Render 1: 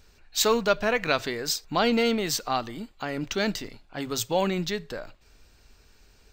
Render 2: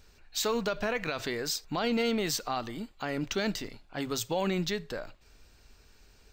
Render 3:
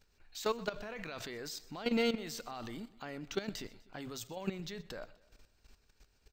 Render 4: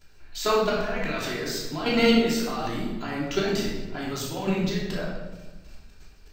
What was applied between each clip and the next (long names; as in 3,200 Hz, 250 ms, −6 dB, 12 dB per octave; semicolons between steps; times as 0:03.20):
brickwall limiter −19.5 dBFS, peak gain reduction 11 dB; level −1.5 dB
output level in coarse steps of 14 dB; repeating echo 125 ms, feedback 50%, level −20.5 dB; level −1.5 dB
rectangular room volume 610 cubic metres, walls mixed, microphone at 3 metres; level +6 dB